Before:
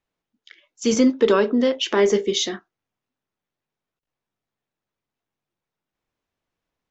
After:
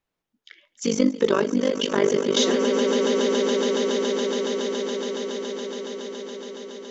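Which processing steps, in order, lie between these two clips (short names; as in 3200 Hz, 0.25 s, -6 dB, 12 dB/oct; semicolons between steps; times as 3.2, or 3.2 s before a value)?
swelling echo 0.14 s, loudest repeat 8, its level -13 dB; 0.86–2.37 AM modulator 49 Hz, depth 80%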